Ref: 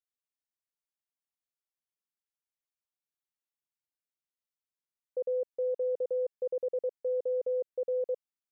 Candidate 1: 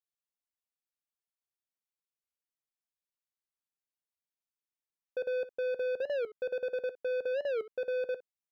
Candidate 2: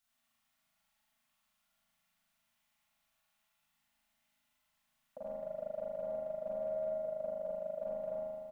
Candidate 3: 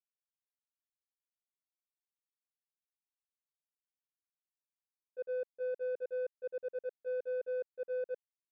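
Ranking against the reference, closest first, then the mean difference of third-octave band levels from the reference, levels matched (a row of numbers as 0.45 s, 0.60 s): 3, 1, 2; 3.0 dB, 6.5 dB, 10.0 dB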